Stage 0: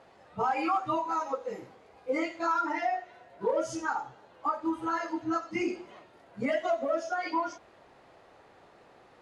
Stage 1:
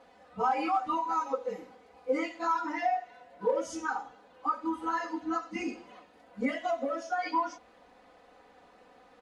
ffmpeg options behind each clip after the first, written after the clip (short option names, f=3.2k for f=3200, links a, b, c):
-af "aecho=1:1:4:0.91,volume=-3.5dB"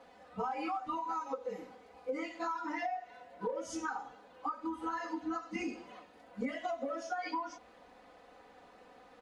-filter_complex "[0:a]acrossover=split=130[a][b];[b]acompressor=threshold=-34dB:ratio=6[c];[a][c]amix=inputs=2:normalize=0"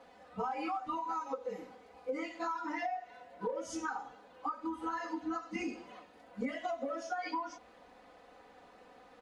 -af anull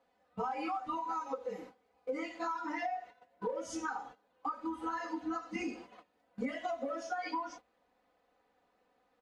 -af "agate=range=-16dB:threshold=-50dB:ratio=16:detection=peak"